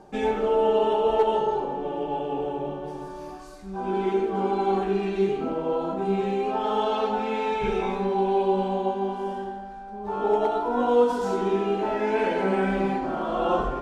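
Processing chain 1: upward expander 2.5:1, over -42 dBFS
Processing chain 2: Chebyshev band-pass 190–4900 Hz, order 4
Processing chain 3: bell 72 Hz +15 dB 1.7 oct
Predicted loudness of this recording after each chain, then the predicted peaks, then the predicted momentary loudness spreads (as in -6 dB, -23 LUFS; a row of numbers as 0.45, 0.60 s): -33.5, -25.5, -24.0 LUFS; -10.0, -10.5, -9.0 dBFS; 18, 12, 11 LU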